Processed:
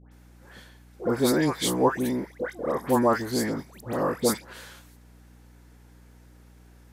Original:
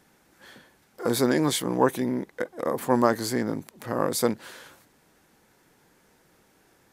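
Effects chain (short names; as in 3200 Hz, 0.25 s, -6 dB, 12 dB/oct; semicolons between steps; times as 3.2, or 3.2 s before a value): dispersion highs, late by 0.118 s, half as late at 1500 Hz; hum 60 Hz, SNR 24 dB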